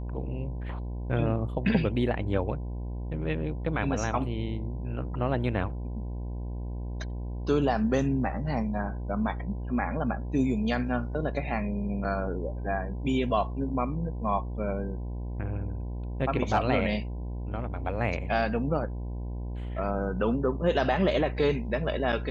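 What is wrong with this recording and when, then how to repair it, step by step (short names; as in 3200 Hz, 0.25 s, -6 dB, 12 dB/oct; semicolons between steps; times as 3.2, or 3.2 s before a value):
buzz 60 Hz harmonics 17 -34 dBFS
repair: de-hum 60 Hz, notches 17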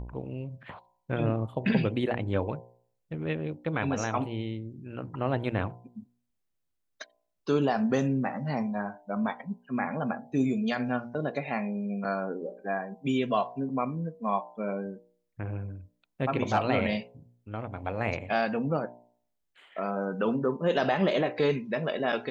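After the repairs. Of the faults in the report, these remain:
none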